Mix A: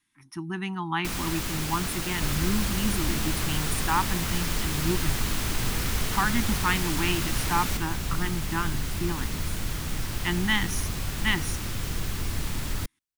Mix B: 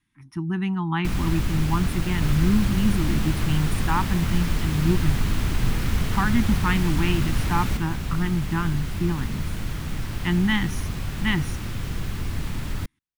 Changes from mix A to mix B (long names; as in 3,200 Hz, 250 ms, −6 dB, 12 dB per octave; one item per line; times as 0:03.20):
second sound: add low-shelf EQ 170 Hz −10 dB
master: add bass and treble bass +11 dB, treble −7 dB